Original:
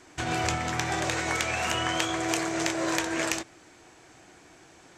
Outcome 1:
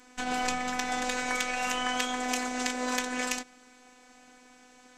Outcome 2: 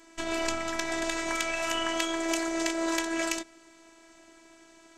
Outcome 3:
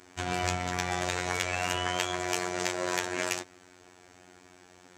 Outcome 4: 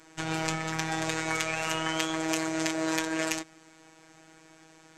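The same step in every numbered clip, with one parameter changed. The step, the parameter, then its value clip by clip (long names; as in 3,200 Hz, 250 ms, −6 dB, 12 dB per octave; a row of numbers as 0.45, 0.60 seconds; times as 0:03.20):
phases set to zero, frequency: 250, 330, 90, 160 Hertz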